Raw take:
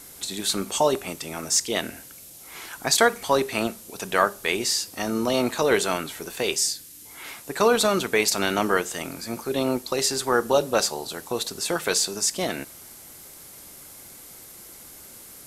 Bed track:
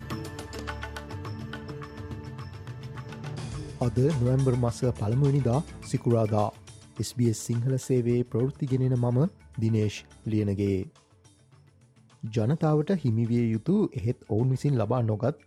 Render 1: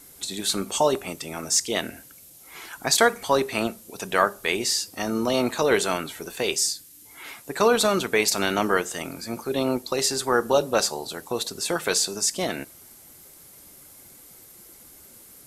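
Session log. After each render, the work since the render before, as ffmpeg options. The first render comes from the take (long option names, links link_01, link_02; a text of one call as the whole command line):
ffmpeg -i in.wav -af "afftdn=noise_reduction=6:noise_floor=-45" out.wav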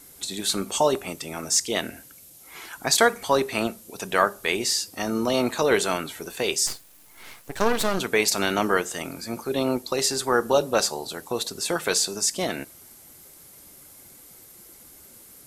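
ffmpeg -i in.wav -filter_complex "[0:a]asplit=3[link_01][link_02][link_03];[link_01]afade=type=out:start_time=6.66:duration=0.02[link_04];[link_02]aeval=exprs='max(val(0),0)':channel_layout=same,afade=type=in:start_time=6.66:duration=0.02,afade=type=out:start_time=7.98:duration=0.02[link_05];[link_03]afade=type=in:start_time=7.98:duration=0.02[link_06];[link_04][link_05][link_06]amix=inputs=3:normalize=0" out.wav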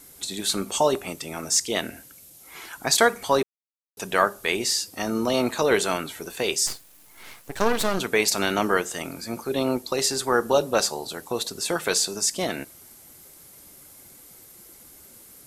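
ffmpeg -i in.wav -filter_complex "[0:a]asplit=3[link_01][link_02][link_03];[link_01]atrim=end=3.43,asetpts=PTS-STARTPTS,afade=type=out:start_time=3.426:duration=0.004:curve=hsin[link_04];[link_02]atrim=start=3.43:end=3.97,asetpts=PTS-STARTPTS,volume=0[link_05];[link_03]atrim=start=3.97,asetpts=PTS-STARTPTS,afade=type=in:duration=0.004:curve=hsin[link_06];[link_04][link_05][link_06]concat=n=3:v=0:a=1" out.wav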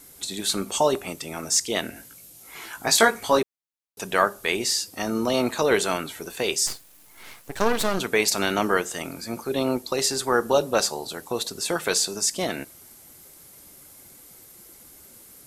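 ffmpeg -i in.wav -filter_complex "[0:a]asettb=1/sr,asplit=3[link_01][link_02][link_03];[link_01]atrim=end=1.944[link_04];[link_02]atrim=start=1.94:end=3.39,asetpts=PTS-STARTPTS,afade=type=in:duration=0.004:curve=qsin,afade=type=out:start_time=1.446:duration=0.004:curve=qsin,asplit=2[link_05][link_06];[link_06]adelay=18,volume=-4dB[link_07];[link_05][link_07]amix=inputs=2:normalize=0,atrim=end_sample=63945[link_08];[link_03]atrim=start=3.386[link_09];[link_04][link_08]acrossfade=duration=0.004:curve1=hsin:curve2=qsin[link_10];[link_10][link_09]acrossfade=duration=0.004:curve1=qsin:curve2=hsin" out.wav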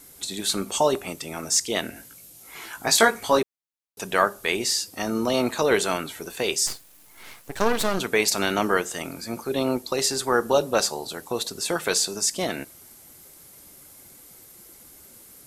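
ffmpeg -i in.wav -af anull out.wav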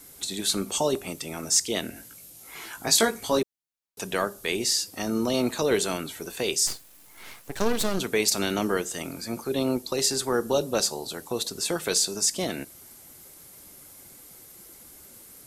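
ffmpeg -i in.wav -filter_complex "[0:a]acrossover=split=490|3000[link_01][link_02][link_03];[link_02]acompressor=threshold=-44dB:ratio=1.5[link_04];[link_01][link_04][link_03]amix=inputs=3:normalize=0" out.wav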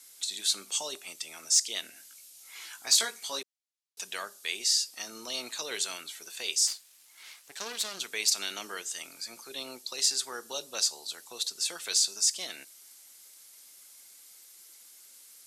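ffmpeg -i in.wav -af "bandpass=frequency=5100:width_type=q:width=0.71:csg=0,asoftclip=type=tanh:threshold=-9dB" out.wav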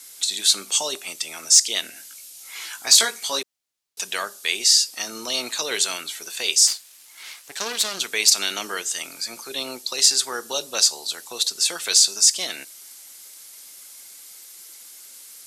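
ffmpeg -i in.wav -af "volume=10dB,alimiter=limit=-2dB:level=0:latency=1" out.wav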